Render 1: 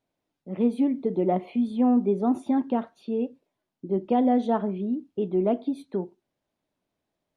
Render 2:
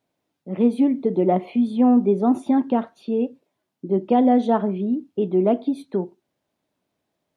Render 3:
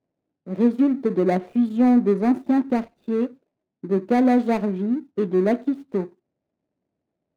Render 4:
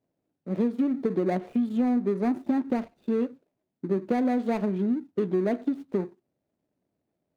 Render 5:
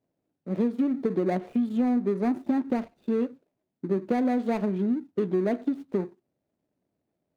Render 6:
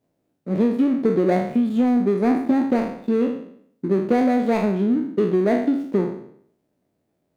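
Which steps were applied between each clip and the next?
HPF 76 Hz; gain +5 dB
median filter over 41 samples
compressor, threshold -22 dBFS, peak gain reduction 9 dB
nothing audible
spectral trails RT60 0.65 s; gain +5.5 dB

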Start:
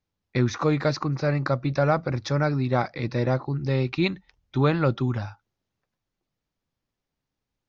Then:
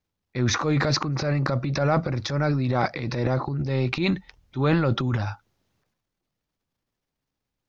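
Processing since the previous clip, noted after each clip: transient shaper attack -6 dB, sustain +10 dB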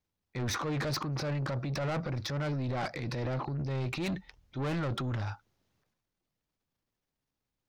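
soft clip -25.5 dBFS, distortion -9 dB; gain -4 dB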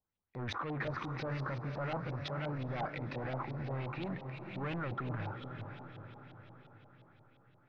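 diffused feedback echo 0.468 s, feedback 55%, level -7 dB; LFO low-pass saw up 5.7 Hz 730–3500 Hz; gain -7 dB

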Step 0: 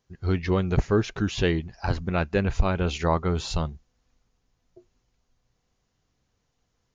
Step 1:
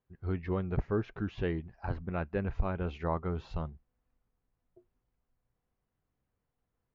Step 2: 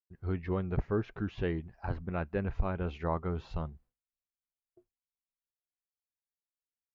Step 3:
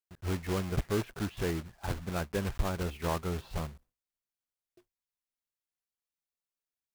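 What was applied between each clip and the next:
LPF 1900 Hz 12 dB/oct; gain -9 dB
expander -56 dBFS
block floating point 3-bit

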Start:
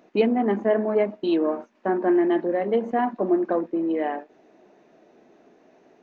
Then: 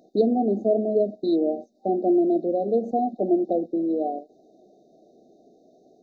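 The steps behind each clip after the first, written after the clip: FFT band-reject 780–3600 Hz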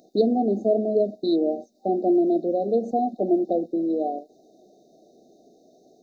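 high shelf 3300 Hz +10 dB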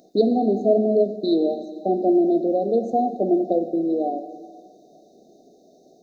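plate-style reverb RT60 1.9 s, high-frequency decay 0.9×, DRR 9 dB; gain +2 dB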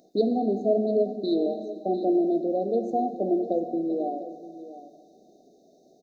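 echo 0.697 s -14 dB; gain -5 dB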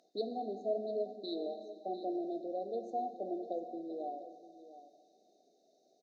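band-pass 2300 Hz, Q 0.58; gain -3.5 dB

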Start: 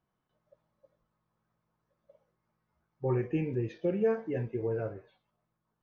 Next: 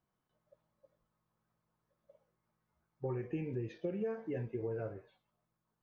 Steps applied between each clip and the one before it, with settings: compressor 6:1, threshold -31 dBFS, peak gain reduction 8 dB; gain -3 dB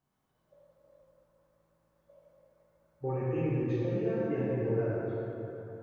plate-style reverb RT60 3.6 s, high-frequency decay 0.5×, DRR -7.5 dB

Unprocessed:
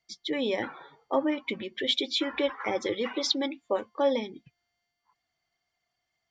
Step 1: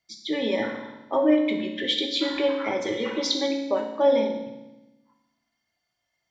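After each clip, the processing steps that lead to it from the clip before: reverb RT60 1.0 s, pre-delay 3 ms, DRR 0.5 dB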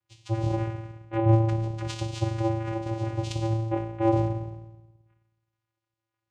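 vocoder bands 4, square 112 Hz; gain -1 dB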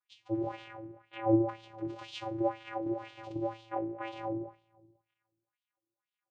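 wah 2 Hz 300–3500 Hz, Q 3; gain +3.5 dB

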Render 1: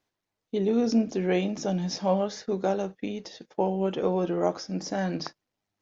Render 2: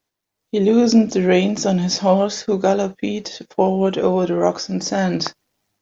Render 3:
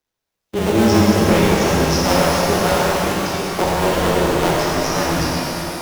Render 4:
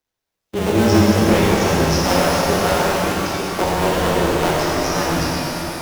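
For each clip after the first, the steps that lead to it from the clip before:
high shelf 6000 Hz +8 dB; AGC gain up to 11.5 dB
cycle switcher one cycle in 2, muted; frequency shift -16 Hz; shimmer reverb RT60 3.5 s, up +12 st, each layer -8 dB, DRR -6 dB; gain -3 dB
reverb RT60 2.2 s, pre-delay 5 ms, DRR 10 dB; gain -1 dB

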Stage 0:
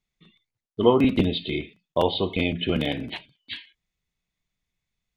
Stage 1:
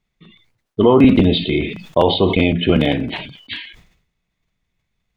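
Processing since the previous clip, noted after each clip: high shelf 3900 Hz -11 dB; maximiser +11 dB; sustainer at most 81 dB/s; gain -1 dB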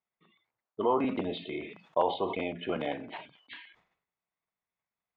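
band-pass 940 Hz, Q 1.2; gain -8.5 dB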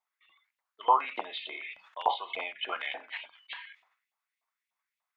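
LFO high-pass saw up 3.4 Hz 760–2800 Hz; gain +1.5 dB

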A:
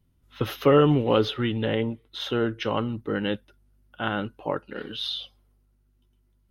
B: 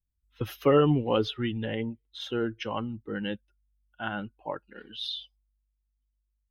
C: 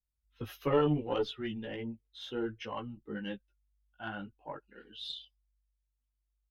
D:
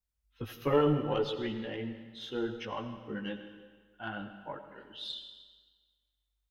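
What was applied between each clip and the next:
per-bin expansion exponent 1.5; gain -2 dB
chorus voices 4, 0.6 Hz, delay 17 ms, depth 3.8 ms; added harmonics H 2 -11 dB, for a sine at -11 dBFS; gain -4 dB
reverb RT60 1.5 s, pre-delay 45 ms, DRR 8.5 dB; gain +1 dB

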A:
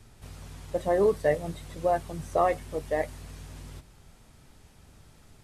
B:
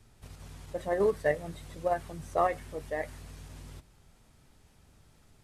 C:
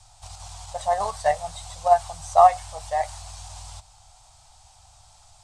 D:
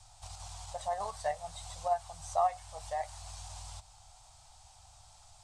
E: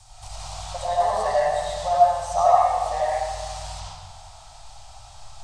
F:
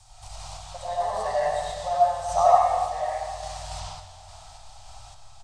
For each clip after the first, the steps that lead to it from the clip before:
dynamic EQ 1700 Hz, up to +5 dB, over -46 dBFS, Q 1.5; in parallel at -2.5 dB: level quantiser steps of 22 dB; on the sum: gain -7.5 dB
EQ curve 100 Hz 0 dB, 180 Hz -17 dB, 380 Hz -28 dB, 750 Hz +13 dB, 1800 Hz -5 dB, 4200 Hz +9 dB, 8400 Hz +12 dB, 12000 Hz -8 dB; gain +5.5 dB
compressor 1.5:1, threshold -39 dBFS, peak gain reduction 11 dB; gain -4.5 dB
reverb RT60 1.5 s, pre-delay 50 ms, DRR -7.5 dB; gain +6 dB
random-step tremolo; feedback echo 0.246 s, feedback 56%, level -15 dB

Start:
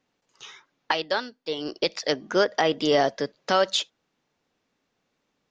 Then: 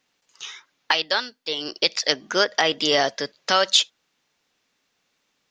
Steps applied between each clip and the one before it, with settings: tilt shelf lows -6.5 dB, about 1200 Hz; gain +3 dB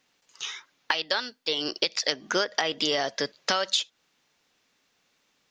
compressor 12:1, threshold -23 dBFS, peak gain reduction 11.5 dB; gain +1.5 dB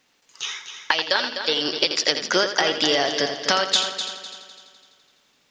multi-head echo 84 ms, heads first and third, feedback 54%, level -9.5 dB; gain +5 dB

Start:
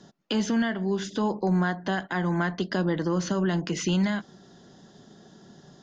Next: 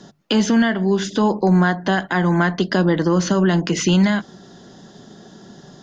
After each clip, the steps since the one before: notches 50/100/150 Hz; gain +9 dB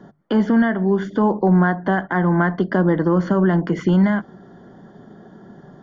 polynomial smoothing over 41 samples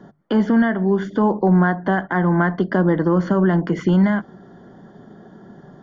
nothing audible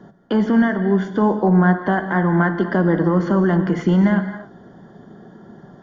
non-linear reverb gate 0.3 s flat, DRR 8 dB

